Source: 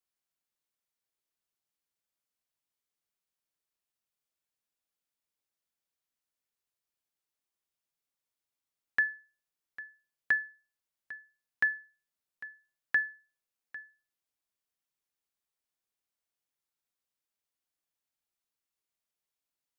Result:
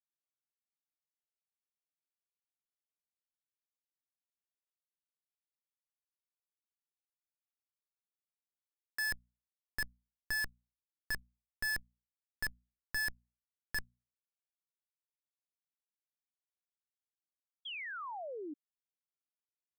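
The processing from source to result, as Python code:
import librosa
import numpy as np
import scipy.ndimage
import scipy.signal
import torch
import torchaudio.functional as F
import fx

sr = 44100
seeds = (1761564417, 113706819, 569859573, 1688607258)

y = fx.schmitt(x, sr, flips_db=-42.0)
y = fx.hum_notches(y, sr, base_hz=60, count=4)
y = fx.spec_paint(y, sr, seeds[0], shape='fall', start_s=17.65, length_s=0.89, low_hz=280.0, high_hz=3400.0, level_db=-52.0)
y = y * 10.0 ** (9.5 / 20.0)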